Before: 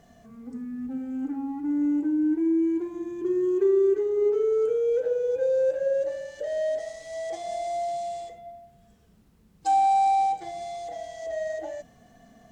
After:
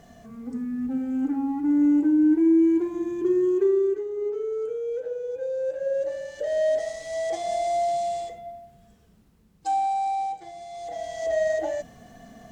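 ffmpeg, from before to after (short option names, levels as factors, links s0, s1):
-af "volume=23.7,afade=t=out:st=3.14:d=0.91:silence=0.298538,afade=t=in:st=5.59:d=1.2:silence=0.298538,afade=t=out:st=8.18:d=1.77:silence=0.316228,afade=t=in:st=10.69:d=0.57:silence=0.251189"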